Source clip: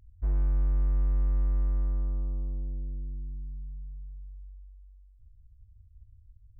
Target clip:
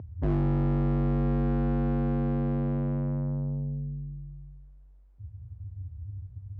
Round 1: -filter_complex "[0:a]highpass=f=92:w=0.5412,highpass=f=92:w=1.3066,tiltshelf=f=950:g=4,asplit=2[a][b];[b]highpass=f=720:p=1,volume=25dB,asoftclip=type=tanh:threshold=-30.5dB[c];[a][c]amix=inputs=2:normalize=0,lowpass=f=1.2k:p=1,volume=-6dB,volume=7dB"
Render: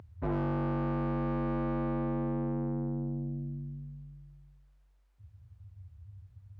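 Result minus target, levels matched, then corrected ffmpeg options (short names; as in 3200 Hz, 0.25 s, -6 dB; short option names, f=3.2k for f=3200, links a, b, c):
1000 Hz band +6.0 dB
-filter_complex "[0:a]highpass=f=92:w=0.5412,highpass=f=92:w=1.3066,tiltshelf=f=950:g=16,asplit=2[a][b];[b]highpass=f=720:p=1,volume=25dB,asoftclip=type=tanh:threshold=-30.5dB[c];[a][c]amix=inputs=2:normalize=0,lowpass=f=1.2k:p=1,volume=-6dB,volume=7dB"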